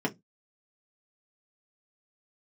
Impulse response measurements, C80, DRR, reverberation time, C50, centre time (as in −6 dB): 34.5 dB, −2.5 dB, 0.15 s, 22.0 dB, 8 ms